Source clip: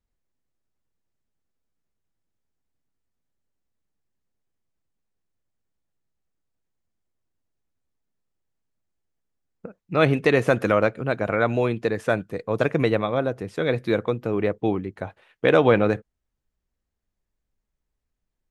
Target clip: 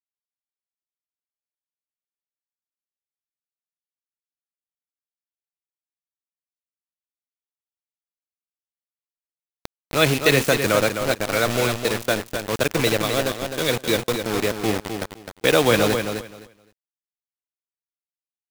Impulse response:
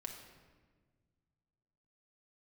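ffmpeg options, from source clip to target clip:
-filter_complex "[0:a]acrossover=split=310|3500[link_01][link_02][link_03];[link_03]dynaudnorm=framelen=200:gausssize=13:maxgain=16dB[link_04];[link_01][link_02][link_04]amix=inputs=3:normalize=0,acrusher=bits=3:mix=0:aa=0.000001,aecho=1:1:258|516|774:0.447|0.0804|0.0145,volume=-1dB"

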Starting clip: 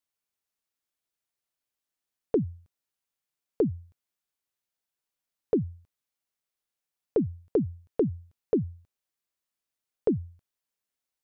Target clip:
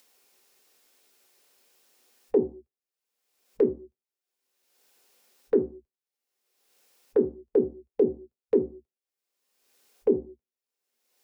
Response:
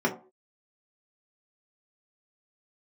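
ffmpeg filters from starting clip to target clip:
-filter_complex "[0:a]afwtdn=0.0112,acompressor=mode=upward:threshold=-33dB:ratio=2.5,lowshelf=frequency=270:width_type=q:width=1.5:gain=-12.5,afreqshift=-20,asplit=2[link_01][link_02];[1:a]atrim=start_sample=2205[link_03];[link_02][link_03]afir=irnorm=-1:irlink=0,volume=-16dB[link_04];[link_01][link_04]amix=inputs=2:normalize=0"

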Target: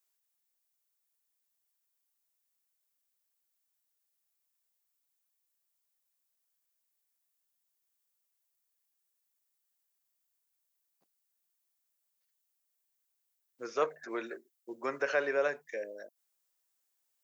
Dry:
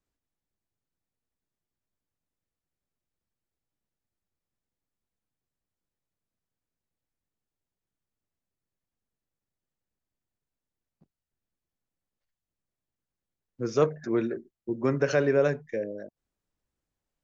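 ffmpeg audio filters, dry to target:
ffmpeg -i in.wav -filter_complex "[0:a]highpass=660,aemphasis=mode=production:type=75kf,acrossover=split=2700[link_01][link_02];[link_02]acompressor=threshold=-53dB:ratio=4:attack=1:release=60[link_03];[link_01][link_03]amix=inputs=2:normalize=0,volume=-1.5dB" out.wav

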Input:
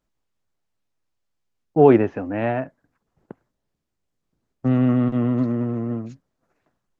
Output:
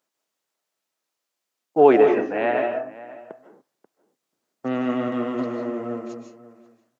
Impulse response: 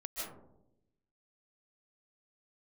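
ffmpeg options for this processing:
-filter_complex "[0:a]highpass=400,asplit=2[link_01][link_02];[link_02]adelay=536.4,volume=-17dB,highshelf=frequency=4000:gain=-12.1[link_03];[link_01][link_03]amix=inputs=2:normalize=0,asplit=2[link_04][link_05];[1:a]atrim=start_sample=2205,afade=type=out:start_time=0.35:duration=0.01,atrim=end_sample=15876,highshelf=frequency=2800:gain=11[link_06];[link_05][link_06]afir=irnorm=-1:irlink=0,volume=-2.5dB[link_07];[link_04][link_07]amix=inputs=2:normalize=0,volume=-1dB"

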